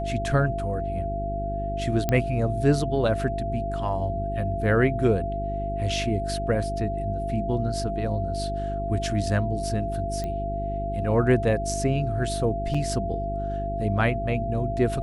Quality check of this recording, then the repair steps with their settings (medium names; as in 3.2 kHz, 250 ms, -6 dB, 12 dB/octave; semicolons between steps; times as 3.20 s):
hum 50 Hz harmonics 8 -31 dBFS
whine 680 Hz -29 dBFS
2.09 s: pop -10 dBFS
10.24 s: pop -19 dBFS
12.74–12.75 s: dropout 5.2 ms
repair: de-click; de-hum 50 Hz, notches 8; band-stop 680 Hz, Q 30; interpolate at 12.74 s, 5.2 ms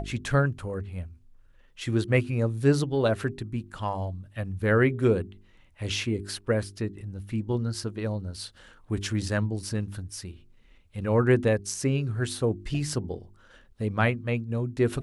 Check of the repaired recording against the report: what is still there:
nothing left